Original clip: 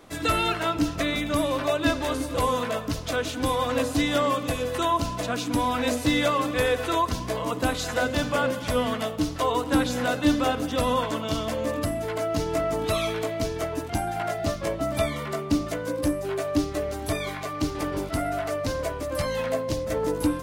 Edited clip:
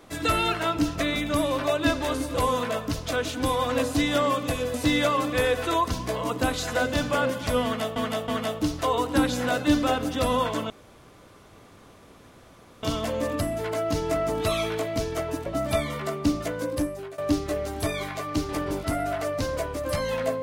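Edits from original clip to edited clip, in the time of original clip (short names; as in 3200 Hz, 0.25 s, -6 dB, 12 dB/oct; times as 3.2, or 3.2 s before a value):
4.74–5.95 cut
8.85–9.17 loop, 3 plays
11.27 insert room tone 2.13 s
13.9–14.72 cut
15.77–16.44 fade out equal-power, to -18.5 dB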